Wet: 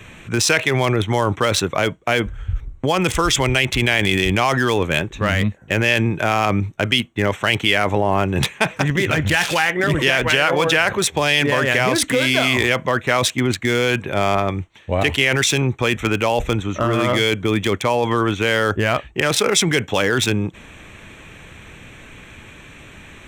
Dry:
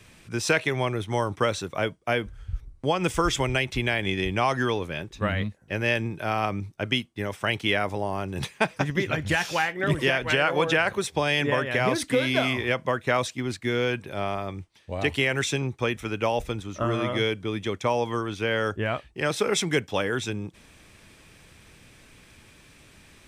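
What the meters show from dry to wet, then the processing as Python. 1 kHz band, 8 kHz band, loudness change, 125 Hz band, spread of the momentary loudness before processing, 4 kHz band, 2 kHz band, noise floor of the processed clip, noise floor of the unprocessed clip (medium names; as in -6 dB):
+7.0 dB, +12.0 dB, +8.0 dB, +8.5 dB, 7 LU, +10.0 dB, +8.5 dB, -43 dBFS, -54 dBFS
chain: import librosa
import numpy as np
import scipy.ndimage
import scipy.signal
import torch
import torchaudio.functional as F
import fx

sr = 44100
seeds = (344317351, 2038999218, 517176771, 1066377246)

p1 = fx.wiener(x, sr, points=9)
p2 = fx.high_shelf(p1, sr, hz=2400.0, db=10.0)
p3 = fx.over_compress(p2, sr, threshold_db=-29.0, ratio=-1.0)
p4 = p2 + (p3 * librosa.db_to_amplitude(3.0))
y = p4 * librosa.db_to_amplitude(1.5)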